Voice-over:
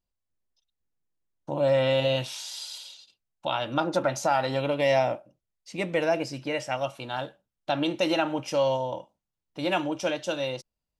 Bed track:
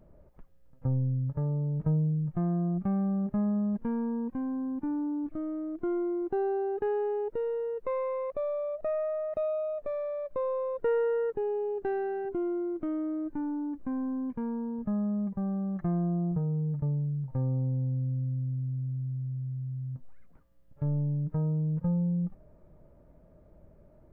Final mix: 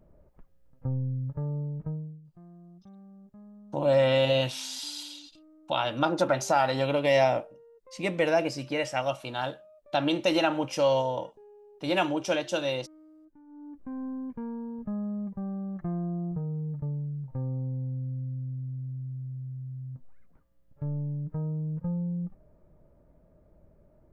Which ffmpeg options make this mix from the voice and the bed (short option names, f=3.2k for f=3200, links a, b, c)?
-filter_complex "[0:a]adelay=2250,volume=0.5dB[a];[1:a]volume=17dB,afade=t=out:st=1.59:d=0.62:silence=0.1,afade=t=in:st=13.46:d=0.59:silence=0.112202[b];[a][b]amix=inputs=2:normalize=0"